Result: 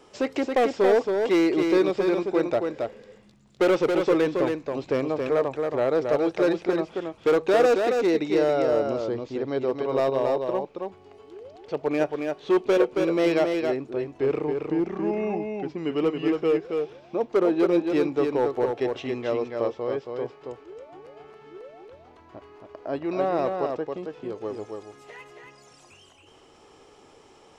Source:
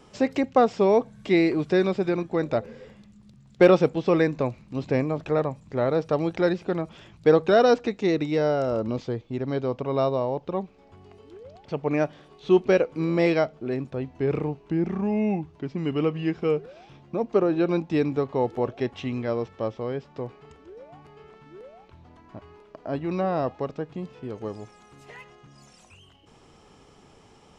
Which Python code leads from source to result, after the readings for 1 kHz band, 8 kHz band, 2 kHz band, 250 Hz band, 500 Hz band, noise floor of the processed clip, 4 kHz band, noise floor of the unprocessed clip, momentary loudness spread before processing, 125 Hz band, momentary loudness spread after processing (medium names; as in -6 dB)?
-0.5 dB, no reading, 0.0 dB, -0.5 dB, +1.0 dB, -54 dBFS, +1.0 dB, -54 dBFS, 14 LU, -8.5 dB, 14 LU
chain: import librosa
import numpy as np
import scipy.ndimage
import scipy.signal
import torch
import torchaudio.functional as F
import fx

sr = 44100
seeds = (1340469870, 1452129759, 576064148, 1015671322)

y = np.clip(10.0 ** (17.5 / 20.0) * x, -1.0, 1.0) / 10.0 ** (17.5 / 20.0)
y = fx.low_shelf_res(y, sr, hz=260.0, db=-7.5, q=1.5)
y = y + 10.0 ** (-4.5 / 20.0) * np.pad(y, (int(274 * sr / 1000.0), 0))[:len(y)]